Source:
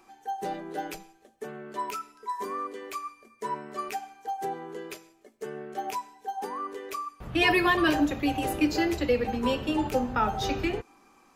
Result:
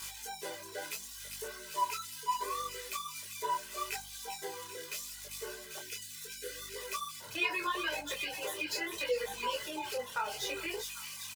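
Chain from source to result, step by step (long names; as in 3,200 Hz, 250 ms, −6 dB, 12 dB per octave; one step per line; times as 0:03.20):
spike at every zero crossing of −27.5 dBFS
0:05.78–0:06.76: elliptic band-stop filter 550–1,400 Hz
delay with a high-pass on its return 396 ms, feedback 72%, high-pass 2,700 Hz, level −6 dB
brickwall limiter −21 dBFS, peak gain reduction 10.5 dB
meter weighting curve A
reverb reduction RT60 1.3 s
comb filter 2 ms, depth 77%
mains hum 50 Hz, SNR 20 dB
low-shelf EQ 92 Hz −7.5 dB
micro pitch shift up and down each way 26 cents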